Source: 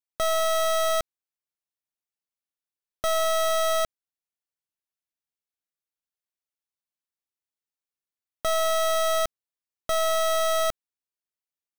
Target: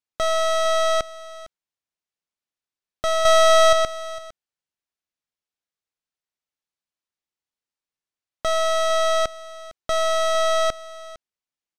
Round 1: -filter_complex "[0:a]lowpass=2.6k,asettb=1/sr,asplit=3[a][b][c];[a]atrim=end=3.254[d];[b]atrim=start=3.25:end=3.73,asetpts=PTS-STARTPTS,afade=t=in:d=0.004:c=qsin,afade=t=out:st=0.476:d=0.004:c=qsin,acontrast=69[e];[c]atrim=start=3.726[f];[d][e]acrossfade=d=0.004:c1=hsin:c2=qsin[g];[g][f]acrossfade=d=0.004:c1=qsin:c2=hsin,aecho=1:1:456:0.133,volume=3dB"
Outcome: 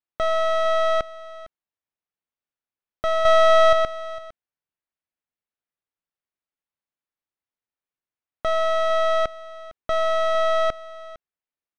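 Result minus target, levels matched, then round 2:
8000 Hz band -13.5 dB
-filter_complex "[0:a]lowpass=7k,asettb=1/sr,asplit=3[a][b][c];[a]atrim=end=3.254[d];[b]atrim=start=3.25:end=3.73,asetpts=PTS-STARTPTS,afade=t=in:d=0.004:c=qsin,afade=t=out:st=0.476:d=0.004:c=qsin,acontrast=69[e];[c]atrim=start=3.726[f];[d][e]acrossfade=d=0.004:c1=hsin:c2=qsin[g];[g][f]acrossfade=d=0.004:c1=qsin:c2=hsin,aecho=1:1:456:0.133,volume=3dB"

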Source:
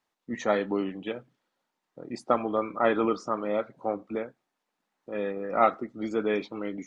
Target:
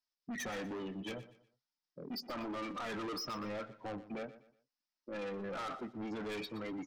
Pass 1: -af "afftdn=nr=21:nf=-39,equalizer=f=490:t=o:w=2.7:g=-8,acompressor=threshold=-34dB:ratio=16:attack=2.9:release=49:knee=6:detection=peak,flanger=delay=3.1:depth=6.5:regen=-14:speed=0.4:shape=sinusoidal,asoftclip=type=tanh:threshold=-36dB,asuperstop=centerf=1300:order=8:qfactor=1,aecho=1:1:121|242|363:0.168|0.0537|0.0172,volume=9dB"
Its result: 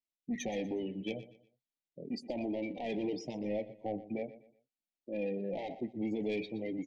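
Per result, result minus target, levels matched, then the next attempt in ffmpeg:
4000 Hz band -7.0 dB; 1000 Hz band -7.0 dB; soft clip: distortion -10 dB
-af "afftdn=nr=21:nf=-39,equalizer=f=490:t=o:w=2.7:g=-8,acompressor=threshold=-34dB:ratio=16:attack=2.9:release=49:knee=6:detection=peak,lowpass=f=5.2k:t=q:w=6.8,flanger=delay=3.1:depth=6.5:regen=-14:speed=0.4:shape=sinusoidal,asoftclip=type=tanh:threshold=-36dB,asuperstop=centerf=1300:order=8:qfactor=1,aecho=1:1:121|242|363:0.168|0.0537|0.0172,volume=9dB"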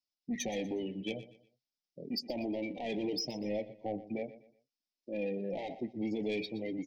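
1000 Hz band -7.5 dB; soft clip: distortion -9 dB
-af "afftdn=nr=21:nf=-39,equalizer=f=490:t=o:w=2.7:g=-8,acompressor=threshold=-34dB:ratio=16:attack=2.9:release=49:knee=6:detection=peak,lowpass=f=5.2k:t=q:w=6.8,flanger=delay=3.1:depth=6.5:regen=-14:speed=0.4:shape=sinusoidal,asoftclip=type=tanh:threshold=-36dB,aecho=1:1:121|242|363:0.168|0.0537|0.0172,volume=9dB"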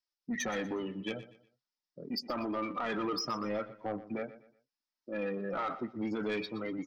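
soft clip: distortion -9 dB
-af "afftdn=nr=21:nf=-39,equalizer=f=490:t=o:w=2.7:g=-8,acompressor=threshold=-34dB:ratio=16:attack=2.9:release=49:knee=6:detection=peak,lowpass=f=5.2k:t=q:w=6.8,flanger=delay=3.1:depth=6.5:regen=-14:speed=0.4:shape=sinusoidal,asoftclip=type=tanh:threshold=-47dB,aecho=1:1:121|242|363:0.168|0.0537|0.0172,volume=9dB"

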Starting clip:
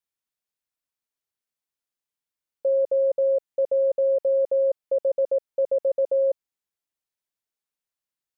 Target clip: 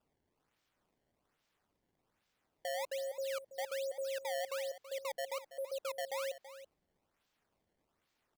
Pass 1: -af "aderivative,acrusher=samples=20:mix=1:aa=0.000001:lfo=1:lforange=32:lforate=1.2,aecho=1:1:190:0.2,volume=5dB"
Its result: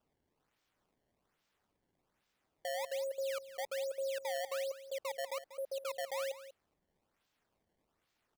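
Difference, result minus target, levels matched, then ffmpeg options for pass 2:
echo 0.139 s early
-af "aderivative,acrusher=samples=20:mix=1:aa=0.000001:lfo=1:lforange=32:lforate=1.2,aecho=1:1:329:0.2,volume=5dB"

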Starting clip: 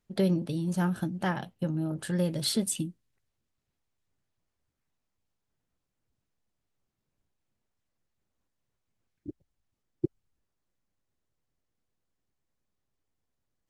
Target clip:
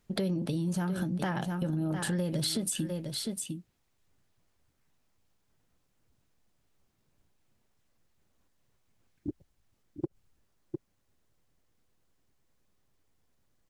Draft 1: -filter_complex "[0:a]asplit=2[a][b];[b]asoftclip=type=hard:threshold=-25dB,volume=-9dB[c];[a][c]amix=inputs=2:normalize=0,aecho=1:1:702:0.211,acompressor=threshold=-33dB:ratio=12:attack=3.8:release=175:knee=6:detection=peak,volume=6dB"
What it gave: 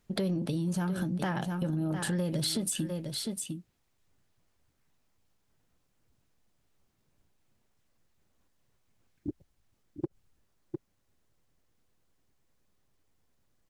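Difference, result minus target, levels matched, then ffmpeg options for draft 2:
hard clip: distortion +21 dB
-filter_complex "[0:a]asplit=2[a][b];[b]asoftclip=type=hard:threshold=-17dB,volume=-9dB[c];[a][c]amix=inputs=2:normalize=0,aecho=1:1:702:0.211,acompressor=threshold=-33dB:ratio=12:attack=3.8:release=175:knee=6:detection=peak,volume=6dB"

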